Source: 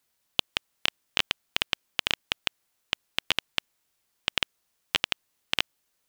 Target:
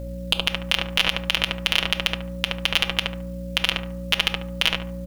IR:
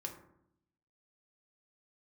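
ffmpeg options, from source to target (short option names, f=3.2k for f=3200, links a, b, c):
-filter_complex "[0:a]equalizer=f=180:w=0.79:g=-14.5,aecho=1:1:6.2:0.5,acontrast=61,aeval=exprs='val(0)+0.00398*sin(2*PI*550*n/s)':c=same,atempo=1.2,aeval=exprs='val(0)+0.00794*(sin(2*PI*60*n/s)+sin(2*PI*2*60*n/s)/2+sin(2*PI*3*60*n/s)/3+sin(2*PI*4*60*n/s)/4+sin(2*PI*5*60*n/s)/5)':c=same,asplit=2[a][b];[b]adelay=72,lowpass=f=1.4k:p=1,volume=-8dB,asplit=2[c][d];[d]adelay=72,lowpass=f=1.4k:p=1,volume=0.34,asplit=2[e][f];[f]adelay=72,lowpass=f=1.4k:p=1,volume=0.34,asplit=2[g][h];[h]adelay=72,lowpass=f=1.4k:p=1,volume=0.34[i];[a][c][e][g][i]amix=inputs=5:normalize=0,asplit=2[j][k];[1:a]atrim=start_sample=2205[l];[k][l]afir=irnorm=-1:irlink=0,volume=-7dB[m];[j][m]amix=inputs=2:normalize=0,alimiter=level_in=9dB:limit=-1dB:release=50:level=0:latency=1,volume=-1dB"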